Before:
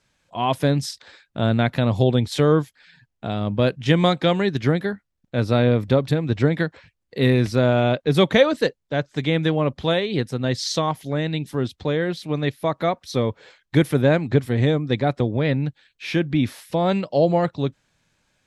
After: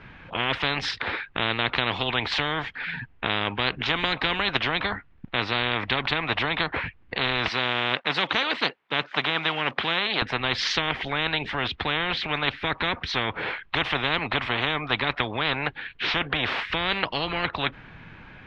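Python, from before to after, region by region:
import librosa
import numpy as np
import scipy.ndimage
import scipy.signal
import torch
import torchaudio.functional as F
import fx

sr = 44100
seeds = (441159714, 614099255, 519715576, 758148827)

y = fx.chain(x, sr, fx.block_float(bits=7),
    fx.highpass(hz=580.0, slope=12), at=(7.48, 10.22))
y = scipy.signal.sosfilt(scipy.signal.butter(4, 2600.0, 'lowpass', fs=sr, output='sos'), y)
y = fx.peak_eq(y, sr, hz=570.0, db=-8.5, octaves=0.39)
y = fx.spectral_comp(y, sr, ratio=10.0)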